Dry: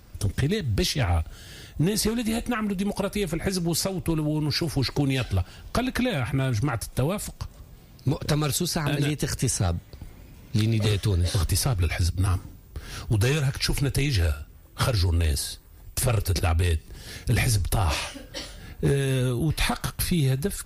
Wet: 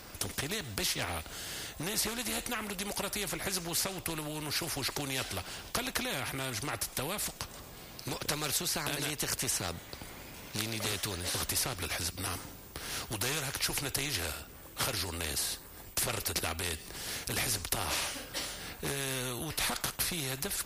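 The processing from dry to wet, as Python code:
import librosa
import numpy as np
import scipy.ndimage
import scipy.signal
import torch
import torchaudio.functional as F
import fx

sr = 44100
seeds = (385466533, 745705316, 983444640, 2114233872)

y = fx.low_shelf(x, sr, hz=160.0, db=-9.0)
y = fx.spectral_comp(y, sr, ratio=2.0)
y = y * 10.0 ** (-2.0 / 20.0)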